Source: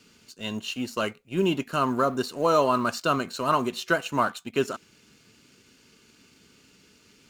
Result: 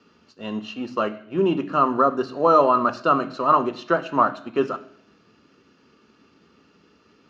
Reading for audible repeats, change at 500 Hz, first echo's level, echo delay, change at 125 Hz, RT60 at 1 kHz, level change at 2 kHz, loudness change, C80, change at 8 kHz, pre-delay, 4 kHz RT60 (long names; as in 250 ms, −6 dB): no echo audible, +4.5 dB, no echo audible, no echo audible, −0.5 dB, 0.65 s, −1.5 dB, +5.0 dB, 19.5 dB, below −10 dB, 3 ms, 0.65 s